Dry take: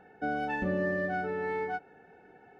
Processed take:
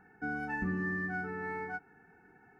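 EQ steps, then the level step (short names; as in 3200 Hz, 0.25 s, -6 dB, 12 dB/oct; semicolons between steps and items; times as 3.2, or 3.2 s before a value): fixed phaser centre 1400 Hz, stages 4; 0.0 dB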